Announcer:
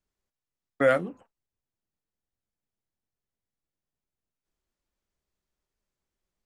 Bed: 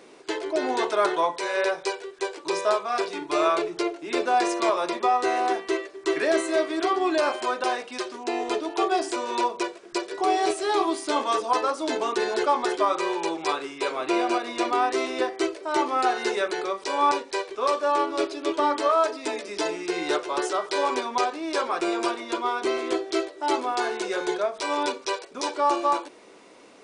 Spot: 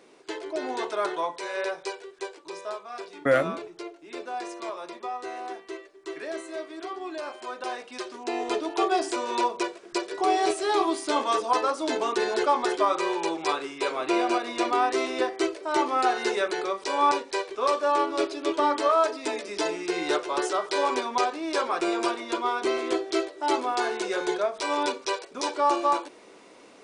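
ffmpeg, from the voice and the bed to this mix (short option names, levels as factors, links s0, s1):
-filter_complex "[0:a]adelay=2450,volume=1[s0];[1:a]volume=2,afade=t=out:st=2.2:d=0.27:silence=0.473151,afade=t=in:st=7.35:d=1.27:silence=0.266073[s1];[s0][s1]amix=inputs=2:normalize=0"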